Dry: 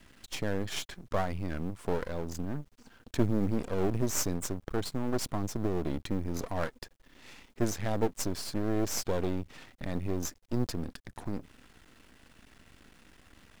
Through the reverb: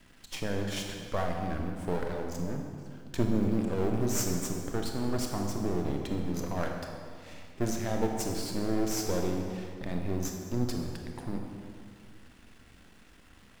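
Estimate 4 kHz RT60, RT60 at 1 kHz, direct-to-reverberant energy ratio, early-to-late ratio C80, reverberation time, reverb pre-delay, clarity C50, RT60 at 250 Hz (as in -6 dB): 1.6 s, 2.0 s, 2.0 dB, 4.5 dB, 2.2 s, 23 ms, 3.0 dB, 2.5 s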